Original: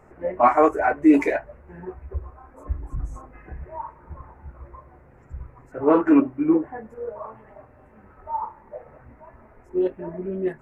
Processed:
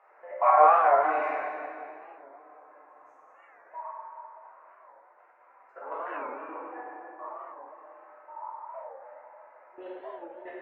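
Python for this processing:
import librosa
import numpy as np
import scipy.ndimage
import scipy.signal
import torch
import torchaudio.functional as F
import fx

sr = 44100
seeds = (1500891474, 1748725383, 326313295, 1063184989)

p1 = scipy.signal.sosfilt(scipy.signal.butter(4, 660.0, 'highpass', fs=sr, output='sos'), x)
p2 = fx.level_steps(p1, sr, step_db=20)
p3 = fx.air_absorb(p2, sr, metres=330.0)
p4 = p3 + fx.echo_tape(p3, sr, ms=165, feedback_pct=83, wet_db=-10.0, lp_hz=1300.0, drive_db=15.0, wow_cents=32, dry=0)
p5 = fx.rev_plate(p4, sr, seeds[0], rt60_s=2.0, hf_ratio=0.95, predelay_ms=0, drr_db=-7.5)
p6 = fx.record_warp(p5, sr, rpm=45.0, depth_cents=160.0)
y = p6 * librosa.db_to_amplitude(-2.5)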